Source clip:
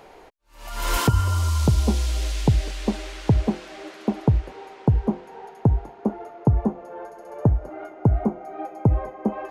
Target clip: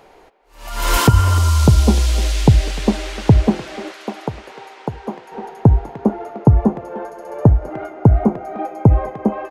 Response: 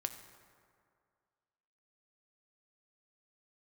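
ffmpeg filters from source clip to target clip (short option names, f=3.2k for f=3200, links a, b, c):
-filter_complex "[0:a]asplit=2[a][b];[b]adelay=300,highpass=300,lowpass=3.4k,asoftclip=type=hard:threshold=-18dB,volume=-13dB[c];[a][c]amix=inputs=2:normalize=0,dynaudnorm=f=140:g=9:m=11.5dB,asettb=1/sr,asplit=3[d][e][f];[d]atrim=end=3.924[g];[e]atrim=start=3.92:end=5.32,asetpts=PTS-STARTPTS,afade=t=in:d=0.004:c=qsin,afade=t=out:st=1.396:d=0.004:c=qsin,highpass=f=990:p=1[h];[f]atrim=start=5.316[i];[g][h]acrossfade=d=0.004:c1=hsin:c2=qsin[j];[j][i]acrossfade=d=0.004:c1=qsin:c2=hsin"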